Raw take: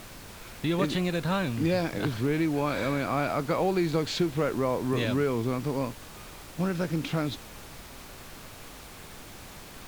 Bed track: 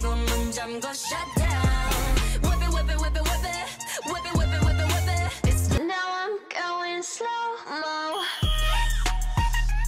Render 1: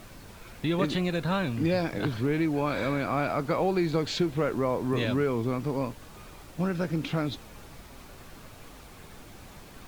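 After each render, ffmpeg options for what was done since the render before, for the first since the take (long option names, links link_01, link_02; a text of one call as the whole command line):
ffmpeg -i in.wav -af "afftdn=noise_reduction=6:noise_floor=-46" out.wav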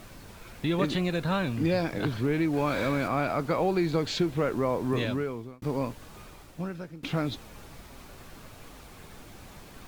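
ffmpeg -i in.wav -filter_complex "[0:a]asettb=1/sr,asplit=3[link_01][link_02][link_03];[link_01]atrim=end=2.534[link_04];[link_02]atrim=start=2.53:end=3.08,asetpts=PTS-STARTPTS,afade=type=in:duration=0.004:curve=qsin,afade=type=out:start_time=0.546:duration=0.004:curve=qsin,aeval=exprs='val(0)+0.5*0.0112*sgn(val(0))':channel_layout=same[link_05];[link_03]atrim=start=3.076[link_06];[link_04][link_05]acrossfade=duration=0.004:curve1=hsin:curve2=qsin[link_07];[link_07][link_06]acrossfade=duration=0.004:curve1=qsin:curve2=hsin,asplit=3[link_08][link_09][link_10];[link_08]atrim=end=5.62,asetpts=PTS-STARTPTS,afade=type=out:start_time=4.95:duration=0.67[link_11];[link_09]atrim=start=5.62:end=7.03,asetpts=PTS-STARTPTS,afade=type=in:duration=0.004:curve=hsin,afade=type=out:start_time=0.57:duration=0.84:silence=0.0944061[link_12];[link_10]atrim=start=7.03,asetpts=PTS-STARTPTS,afade=type=in:duration=0.004:curve=hsin:silence=0.0944061[link_13];[link_11][link_12][link_13]concat=n=3:v=0:a=1" out.wav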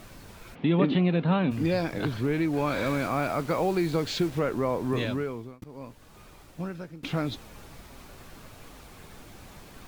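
ffmpeg -i in.wav -filter_complex "[0:a]asplit=3[link_01][link_02][link_03];[link_01]afade=type=out:start_time=0.54:duration=0.02[link_04];[link_02]highpass=120,equalizer=frequency=170:width_type=q:width=4:gain=7,equalizer=frequency=260:width_type=q:width=4:gain=9,equalizer=frequency=430:width_type=q:width=4:gain=4,equalizer=frequency=790:width_type=q:width=4:gain=4,equalizer=frequency=1600:width_type=q:width=4:gain=-4,equalizer=frequency=3100:width_type=q:width=4:gain=3,lowpass=frequency=3300:width=0.5412,lowpass=frequency=3300:width=1.3066,afade=type=in:start_time=0.54:duration=0.02,afade=type=out:start_time=1.5:duration=0.02[link_05];[link_03]afade=type=in:start_time=1.5:duration=0.02[link_06];[link_04][link_05][link_06]amix=inputs=3:normalize=0,asettb=1/sr,asplit=3[link_07][link_08][link_09];[link_07]atrim=end=2.864[link_10];[link_08]atrim=start=2.86:end=4.39,asetpts=PTS-STARTPTS,afade=type=in:duration=0.004:curve=qsin,afade=type=out:start_time=1.526:duration=0.004:curve=qsin,acrusher=bits=6:mix=0:aa=0.5[link_11];[link_09]atrim=start=4.386[link_12];[link_10][link_11]acrossfade=duration=0.004:curve1=hsin:curve2=qsin[link_13];[link_13][link_12]acrossfade=duration=0.004:curve1=qsin:curve2=hsin,asplit=2[link_14][link_15];[link_14]atrim=end=5.64,asetpts=PTS-STARTPTS,afade=type=out:start_time=5.636:duration=0.004:curve=hsin:silence=0.105925[link_16];[link_15]atrim=start=5.64,asetpts=PTS-STARTPTS,afade=type=in:duration=0.98:silence=0.105925[link_17];[link_16][link_17]concat=n=2:v=0:a=1" out.wav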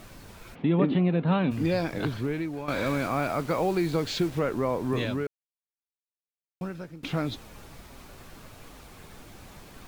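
ffmpeg -i in.wav -filter_complex "[0:a]asettb=1/sr,asplit=3[link_01][link_02][link_03];[link_01]atrim=end=0.624[link_04];[link_02]atrim=start=0.62:end=1.27,asetpts=PTS-STARTPTS,afade=type=in:duration=0.004:curve=qsin,afade=type=out:start_time=0.646:duration=0.004:curve=qsin,lowpass=frequency=1800:poles=1[link_05];[link_03]atrim=start=1.266[link_06];[link_04][link_05]acrossfade=duration=0.004:curve1=hsin:curve2=qsin[link_07];[link_07][link_06]acrossfade=duration=0.004:curve1=qsin:curve2=hsin,asplit=4[link_08][link_09][link_10][link_11];[link_08]atrim=end=2.68,asetpts=PTS-STARTPTS,afade=type=out:start_time=2.06:duration=0.62:silence=0.266073[link_12];[link_09]atrim=start=2.68:end=5.27,asetpts=PTS-STARTPTS,afade=type=in:duration=0.004:curve=hsin:silence=0.266073,afade=type=out:start_time=2.586:duration=0.004:curve=hsin[link_13];[link_10]atrim=start=5.27:end=6.61,asetpts=PTS-STARTPTS,volume=0[link_14];[link_11]atrim=start=6.61,asetpts=PTS-STARTPTS,afade=type=in:duration=0.004:curve=hsin[link_15];[link_12][link_13][link_14][link_15]concat=n=4:v=0:a=1" out.wav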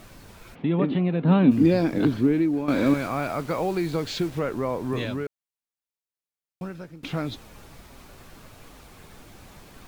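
ffmpeg -i in.wav -filter_complex "[0:a]asettb=1/sr,asplit=3[link_01][link_02][link_03];[link_01]atrim=end=1.234[link_04];[link_02]atrim=start=1.23:end=2.94,asetpts=PTS-STARTPTS,afade=type=in:duration=0.004:curve=qsin,afade=type=out:start_time=1.706:duration=0.004:curve=qsin,equalizer=frequency=270:width=1.2:gain=12.5[link_05];[link_03]atrim=start=2.936[link_06];[link_04][link_05]acrossfade=duration=0.004:curve1=hsin:curve2=qsin[link_07];[link_07][link_06]acrossfade=duration=0.004:curve1=qsin:curve2=hsin" out.wav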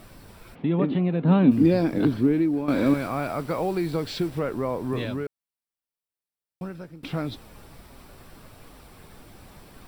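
ffmpeg -i in.wav -af "equalizer=frequency=2600:width=0.61:gain=-2.5,bandreject=frequency=6600:width=5" out.wav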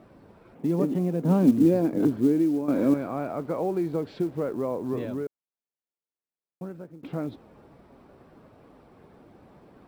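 ffmpeg -i in.wav -af "bandpass=frequency=380:width_type=q:width=0.65:csg=0,acrusher=bits=8:mode=log:mix=0:aa=0.000001" out.wav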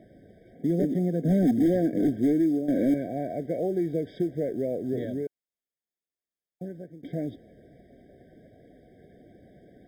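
ffmpeg -i in.wav -filter_complex "[0:a]acrossover=split=1200[link_01][link_02];[link_01]volume=18dB,asoftclip=hard,volume=-18dB[link_03];[link_03][link_02]amix=inputs=2:normalize=0,afftfilt=real='re*eq(mod(floor(b*sr/1024/770),2),0)':imag='im*eq(mod(floor(b*sr/1024/770),2),0)':win_size=1024:overlap=0.75" out.wav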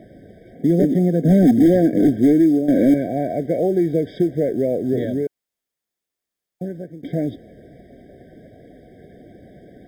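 ffmpeg -i in.wav -af "volume=9dB" out.wav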